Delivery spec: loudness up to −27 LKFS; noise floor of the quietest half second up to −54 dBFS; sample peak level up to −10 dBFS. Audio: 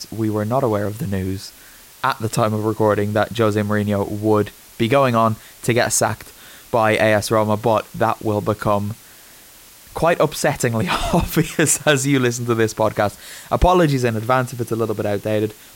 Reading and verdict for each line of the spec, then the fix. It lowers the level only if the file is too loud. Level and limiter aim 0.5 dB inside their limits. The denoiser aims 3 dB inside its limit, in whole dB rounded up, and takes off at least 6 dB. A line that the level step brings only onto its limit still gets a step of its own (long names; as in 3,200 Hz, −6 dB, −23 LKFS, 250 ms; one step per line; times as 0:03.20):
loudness −19.0 LKFS: out of spec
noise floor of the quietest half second −45 dBFS: out of spec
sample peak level −5.0 dBFS: out of spec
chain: broadband denoise 6 dB, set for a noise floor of −45 dBFS
level −8.5 dB